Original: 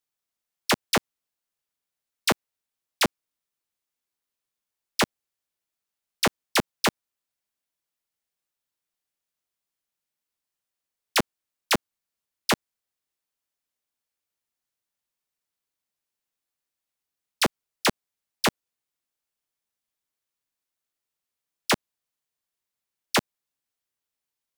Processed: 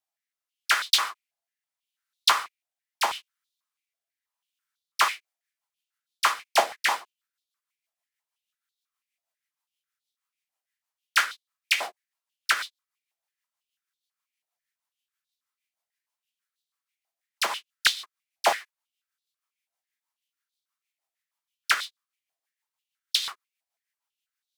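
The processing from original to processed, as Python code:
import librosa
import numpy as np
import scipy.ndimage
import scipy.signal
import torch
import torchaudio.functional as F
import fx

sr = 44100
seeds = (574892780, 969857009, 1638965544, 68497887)

y = fx.rev_gated(x, sr, seeds[0], gate_ms=170, shape='falling', drr_db=3.0)
y = fx.rotary_switch(y, sr, hz=0.8, then_hz=6.3, switch_at_s=4.56)
y = fx.filter_held_highpass(y, sr, hz=6.1, low_hz=720.0, high_hz=3700.0)
y = F.gain(torch.from_numpy(y), -1.5).numpy()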